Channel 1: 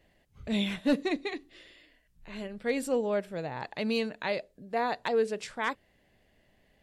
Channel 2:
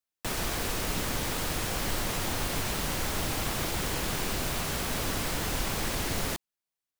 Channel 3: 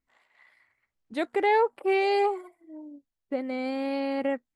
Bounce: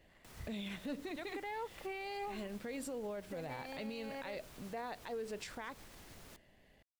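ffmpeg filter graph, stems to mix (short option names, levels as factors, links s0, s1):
-filter_complex "[0:a]volume=1[s0];[1:a]alimiter=level_in=1.26:limit=0.0631:level=0:latency=1:release=207,volume=0.794,volume=0.106[s1];[2:a]highpass=f=870:p=1,volume=0.668[s2];[s0][s2]amix=inputs=2:normalize=0,alimiter=level_in=1.5:limit=0.0631:level=0:latency=1:release=211,volume=0.668,volume=1[s3];[s1][s3]amix=inputs=2:normalize=0,alimiter=level_in=3.35:limit=0.0631:level=0:latency=1:release=127,volume=0.299"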